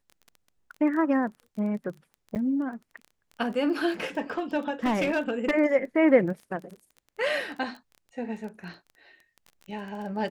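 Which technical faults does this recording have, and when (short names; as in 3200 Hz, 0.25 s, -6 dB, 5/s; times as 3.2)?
crackle 19/s -36 dBFS
2.35–2.36 gap 9 ms
4.38–5.51 clipped -20 dBFS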